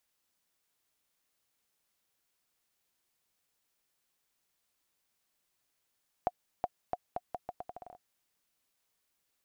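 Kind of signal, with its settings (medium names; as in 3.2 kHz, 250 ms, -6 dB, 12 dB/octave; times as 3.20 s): bouncing ball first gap 0.37 s, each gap 0.79, 720 Hz, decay 41 ms -17 dBFS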